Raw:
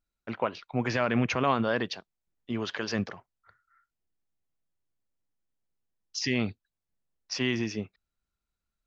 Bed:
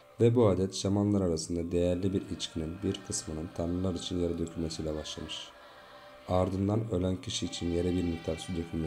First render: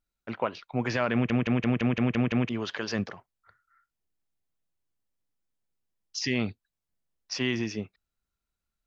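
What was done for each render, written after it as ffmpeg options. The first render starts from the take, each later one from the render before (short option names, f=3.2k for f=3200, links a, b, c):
-filter_complex "[0:a]asplit=9[a][b][c][d][e][f][g][h][i];[a]atrim=end=1.302[j];[b]atrim=start=1.128:end=1.302[k];[c]atrim=start=1.128:end=1.302[l];[d]atrim=start=1.128:end=1.302[m];[e]atrim=start=1.128:end=1.302[n];[f]atrim=start=1.128:end=1.302[o];[g]atrim=start=1.128:end=1.302[p];[h]atrim=start=1.128:end=1.302[q];[i]atrim=start=2.488[r];[j][k]acrossfade=d=0.004:c1=hsin:c2=hsin[s];[s][l]acrossfade=d=0.004:c1=hsin:c2=hsin[t];[t][m]acrossfade=d=0.004:c1=hsin:c2=hsin[u];[u][n]acrossfade=d=0.004:c1=hsin:c2=hsin[v];[v][o]acrossfade=d=0.004:c1=hsin:c2=hsin[w];[w][p]acrossfade=d=0.004:c1=hsin:c2=hsin[x];[x][q]acrossfade=d=0.004:c1=hsin:c2=hsin[y];[y][r]acrossfade=d=0.004:c1=hsin:c2=hsin"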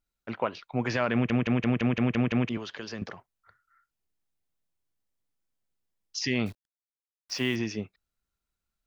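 -filter_complex "[0:a]asettb=1/sr,asplit=3[a][b][c];[a]atrim=end=2.574[d];[b]atrim=start=2.57:end=3.02,asetpts=PTS-STARTPTS,afade=t=in:d=0.004:c=qsin,afade=t=out:st=0.446:d=0.004:c=qsin,acrossover=split=440|2600[e][f][g];[e]acompressor=threshold=-39dB:ratio=4[h];[f]acompressor=threshold=-43dB:ratio=4[i];[g]acompressor=threshold=-42dB:ratio=4[j];[h][i][j]amix=inputs=3:normalize=0[k];[c]atrim=start=3.016[l];[d][k]acrossfade=d=0.004:c1=hsin:c2=qsin[m];[m][l]acrossfade=d=0.004:c1=qsin:c2=hsin,asettb=1/sr,asplit=3[n][o][p];[n]atrim=end=6.464[q];[o]atrim=start=6.46:end=7.56,asetpts=PTS-STARTPTS,afade=t=in:d=0.004:c=qsin,afade=t=out:st=1.096:d=0.004:c=qsin,acrusher=bits=9:dc=4:mix=0:aa=0.000001[r];[p]atrim=start=7.556[s];[q][r]acrossfade=d=0.004:c1=hsin:c2=qsin[t];[t][s]acrossfade=d=0.004:c1=qsin:c2=hsin"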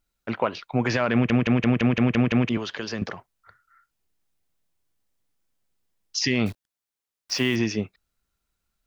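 -af "acontrast=79,alimiter=limit=-11dB:level=0:latency=1:release=74"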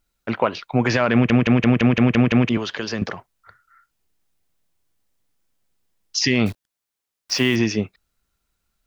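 -af "volume=4.5dB"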